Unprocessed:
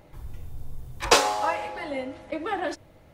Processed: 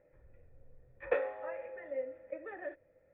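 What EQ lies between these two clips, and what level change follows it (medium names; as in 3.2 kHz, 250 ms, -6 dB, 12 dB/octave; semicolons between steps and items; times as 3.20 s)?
cascade formant filter e; distance through air 150 m; peaking EQ 1.4 kHz +9.5 dB 0.33 oct; -2.5 dB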